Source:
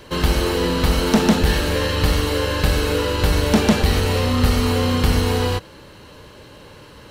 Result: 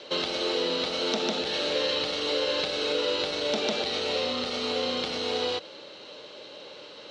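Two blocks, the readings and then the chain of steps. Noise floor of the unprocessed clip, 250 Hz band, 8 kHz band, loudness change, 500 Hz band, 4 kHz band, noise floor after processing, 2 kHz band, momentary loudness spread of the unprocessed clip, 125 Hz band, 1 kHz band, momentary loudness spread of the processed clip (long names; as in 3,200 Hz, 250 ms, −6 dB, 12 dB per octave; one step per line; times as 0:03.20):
−43 dBFS, −15.5 dB, −12.0 dB, −8.5 dB, −6.0 dB, −2.0 dB, −46 dBFS, −8.5 dB, 4 LU, −28.5 dB, −9.5 dB, 17 LU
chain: in parallel at +2 dB: brickwall limiter −17.5 dBFS, peak gain reduction 10 dB
on the sum: downward compressor, threshold −13 dBFS, peak gain reduction 6 dB
loudspeaker in its box 410–6,000 Hz, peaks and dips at 580 Hz +4 dB, 1,000 Hz −8 dB, 1,700 Hz −8 dB, 3,700 Hz +8 dB
level −7 dB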